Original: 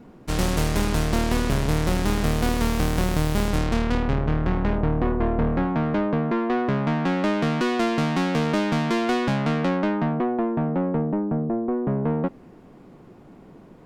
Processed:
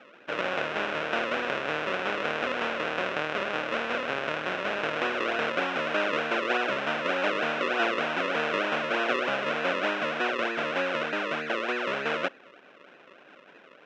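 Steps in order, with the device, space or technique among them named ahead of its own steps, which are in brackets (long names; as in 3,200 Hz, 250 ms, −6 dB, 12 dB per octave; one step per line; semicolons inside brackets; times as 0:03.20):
circuit-bent sampling toy (sample-and-hold swept by an LFO 39×, swing 100% 3.3 Hz; loudspeaker in its box 530–4,500 Hz, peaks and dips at 560 Hz +5 dB, 890 Hz −3 dB, 1,500 Hz +8 dB, 2,600 Hz +7 dB, 4,500 Hz −10 dB)
level −1 dB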